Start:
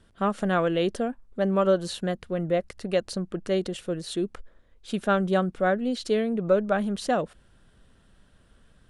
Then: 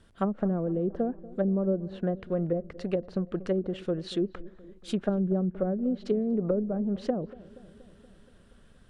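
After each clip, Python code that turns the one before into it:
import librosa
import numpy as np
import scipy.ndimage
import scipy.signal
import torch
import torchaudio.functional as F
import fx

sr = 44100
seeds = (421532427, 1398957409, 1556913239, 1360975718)

y = fx.env_lowpass_down(x, sr, base_hz=340.0, full_db=-21.0)
y = fx.echo_filtered(y, sr, ms=237, feedback_pct=70, hz=1200.0, wet_db=-19.0)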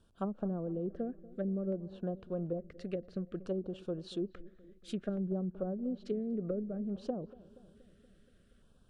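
y = fx.filter_lfo_notch(x, sr, shape='square', hz=0.58, low_hz=910.0, high_hz=2000.0, q=1.4)
y = y * librosa.db_to_amplitude(-8.0)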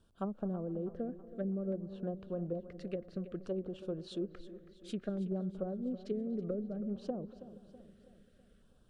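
y = fx.echo_feedback(x, sr, ms=325, feedback_pct=51, wet_db=-14.5)
y = y * librosa.db_to_amplitude(-1.5)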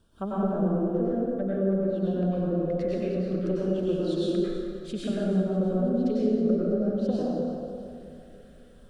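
y = fx.rev_plate(x, sr, seeds[0], rt60_s=1.9, hf_ratio=0.65, predelay_ms=85, drr_db=-7.5)
y = y * librosa.db_to_amplitude(4.5)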